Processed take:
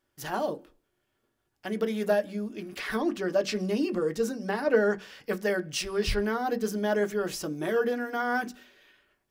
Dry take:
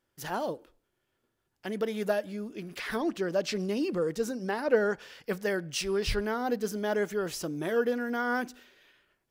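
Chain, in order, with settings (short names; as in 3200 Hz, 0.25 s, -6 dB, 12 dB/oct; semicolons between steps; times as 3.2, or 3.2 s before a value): notch 380 Hz, Q 12; on a send: reverb RT60 0.15 s, pre-delay 3 ms, DRR 6.5 dB; on the sum: gain +1 dB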